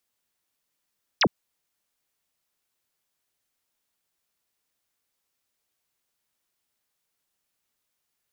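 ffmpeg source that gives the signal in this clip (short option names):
-f lavfi -i "aevalsrc='0.15*clip(t/0.002,0,1)*clip((0.06-t)/0.002,0,1)*sin(2*PI*6500*0.06/log(120/6500)*(exp(log(120/6500)*t/0.06)-1))':d=0.06:s=44100"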